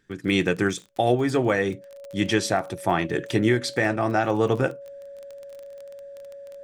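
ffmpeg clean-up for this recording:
ffmpeg -i in.wav -af "adeclick=threshold=4,bandreject=frequency=560:width=30" out.wav

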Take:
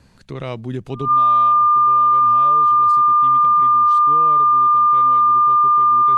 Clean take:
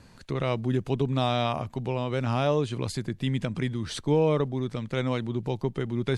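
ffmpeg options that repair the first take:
ffmpeg -i in.wav -af "bandreject=frequency=65.8:width_type=h:width=4,bandreject=frequency=131.6:width_type=h:width=4,bandreject=frequency=197.4:width_type=h:width=4,bandreject=frequency=1200:width=30,asetnsamples=nb_out_samples=441:pad=0,asendcmd='1.08 volume volume 11.5dB',volume=0dB" out.wav

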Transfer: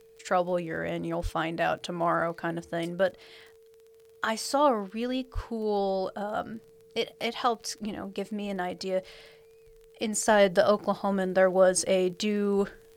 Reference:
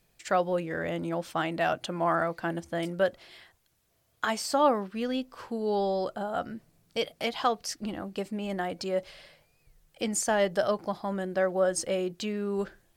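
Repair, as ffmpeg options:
ffmpeg -i in.wav -filter_complex "[0:a]adeclick=threshold=4,bandreject=frequency=450:width=30,asplit=3[link_01][link_02][link_03];[link_01]afade=type=out:start_time=1.22:duration=0.02[link_04];[link_02]highpass=frequency=140:width=0.5412,highpass=frequency=140:width=1.3066,afade=type=in:start_time=1.22:duration=0.02,afade=type=out:start_time=1.34:duration=0.02[link_05];[link_03]afade=type=in:start_time=1.34:duration=0.02[link_06];[link_04][link_05][link_06]amix=inputs=3:normalize=0,asplit=3[link_07][link_08][link_09];[link_07]afade=type=out:start_time=5.34:duration=0.02[link_10];[link_08]highpass=frequency=140:width=0.5412,highpass=frequency=140:width=1.3066,afade=type=in:start_time=5.34:duration=0.02,afade=type=out:start_time=5.46:duration=0.02[link_11];[link_09]afade=type=in:start_time=5.46:duration=0.02[link_12];[link_10][link_11][link_12]amix=inputs=3:normalize=0,asetnsamples=nb_out_samples=441:pad=0,asendcmd='10.26 volume volume -4.5dB',volume=0dB" out.wav

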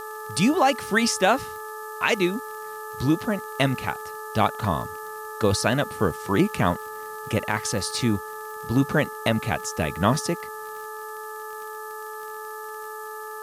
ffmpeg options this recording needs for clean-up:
ffmpeg -i in.wav -af "adeclick=threshold=4,bandreject=frequency=431.4:width_type=h:width=4,bandreject=frequency=862.8:width_type=h:width=4,bandreject=frequency=1294.2:width_type=h:width=4,bandreject=frequency=1725.6:width_type=h:width=4,bandreject=frequency=1200:width=30,afftdn=noise_reduction=30:noise_floor=-36" out.wav

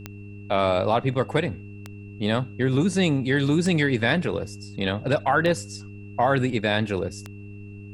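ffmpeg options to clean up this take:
ffmpeg -i in.wav -af "adeclick=threshold=4,bandreject=frequency=101.4:width_type=h:width=4,bandreject=frequency=202.8:width_type=h:width=4,bandreject=frequency=304.2:width_type=h:width=4,bandreject=frequency=405.6:width_type=h:width=4,bandreject=frequency=2700:width=30,agate=range=-21dB:threshold=-32dB" out.wav

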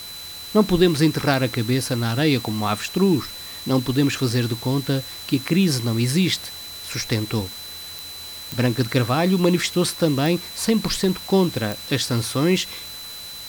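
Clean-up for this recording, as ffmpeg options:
ffmpeg -i in.wav -af "adeclick=threshold=4,bandreject=frequency=4000:width=30,afftdn=noise_reduction=30:noise_floor=-36" out.wav

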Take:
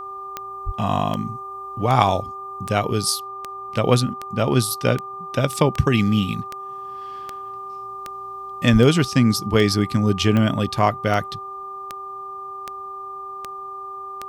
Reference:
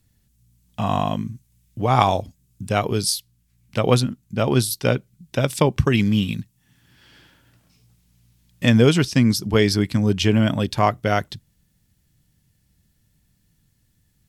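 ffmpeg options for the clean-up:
ffmpeg -i in.wav -filter_complex "[0:a]adeclick=threshold=4,bandreject=frequency=389.7:width_type=h:width=4,bandreject=frequency=779.4:width_type=h:width=4,bandreject=frequency=1169.1:width_type=h:width=4,bandreject=frequency=1200:width=30,asplit=3[link_01][link_02][link_03];[link_01]afade=type=out:start_time=0.65:duration=0.02[link_04];[link_02]highpass=frequency=140:width=0.5412,highpass=frequency=140:width=1.3066,afade=type=in:start_time=0.65:duration=0.02,afade=type=out:start_time=0.77:duration=0.02[link_05];[link_03]afade=type=in:start_time=0.77:duration=0.02[link_06];[link_04][link_05][link_06]amix=inputs=3:normalize=0,asplit=3[link_07][link_08][link_09];[link_07]afade=type=out:start_time=8.72:duration=0.02[link_10];[link_08]highpass=frequency=140:width=0.5412,highpass=frequency=140:width=1.3066,afade=type=in:start_time=8.72:duration=0.02,afade=type=out:start_time=8.84:duration=0.02[link_11];[link_09]afade=type=in:start_time=8.84:duration=0.02[link_12];[link_10][link_11][link_12]amix=inputs=3:normalize=0" out.wav

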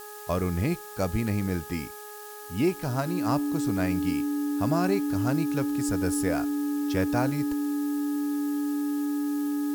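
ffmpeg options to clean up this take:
ffmpeg -i in.wav -af "bandreject=frequency=418.2:width_type=h:width=4,bandreject=frequency=836.4:width_type=h:width=4,bandreject=frequency=1254.6:width_type=h:width=4,bandreject=frequency=1672.8:width_type=h:width=4,bandreject=frequency=290:width=30,afftdn=noise_reduction=30:noise_floor=-42" out.wav

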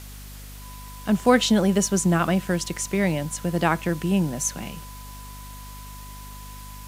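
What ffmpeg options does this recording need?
ffmpeg -i in.wav -af "bandreject=frequency=50.1:width_type=h:width=4,bandreject=frequency=100.2:width_type=h:width=4,bandreject=frequency=150.3:width_type=h:width=4,bandreject=frequency=200.4:width_type=h:width=4,bandreject=frequency=250.5:width_type=h:width=4,bandreject=frequency=1000:width=30,afwtdn=0.0056" out.wav

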